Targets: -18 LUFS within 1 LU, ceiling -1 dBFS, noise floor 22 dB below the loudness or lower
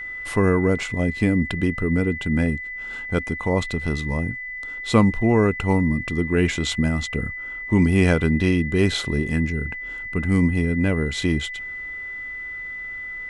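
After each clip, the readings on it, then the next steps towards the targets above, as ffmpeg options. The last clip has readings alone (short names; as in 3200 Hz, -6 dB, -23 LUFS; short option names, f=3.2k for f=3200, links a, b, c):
steady tone 2000 Hz; tone level -30 dBFS; loudness -22.5 LUFS; peak -3.5 dBFS; loudness target -18.0 LUFS
-> -af "bandreject=f=2k:w=30"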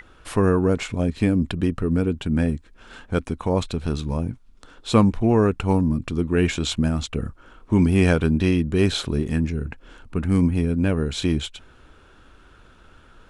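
steady tone none; loudness -22.0 LUFS; peak -3.0 dBFS; loudness target -18.0 LUFS
-> -af "volume=4dB,alimiter=limit=-1dB:level=0:latency=1"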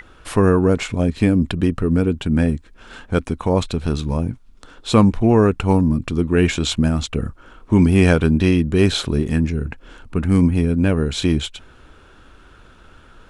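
loudness -18.5 LUFS; peak -1.0 dBFS; noise floor -48 dBFS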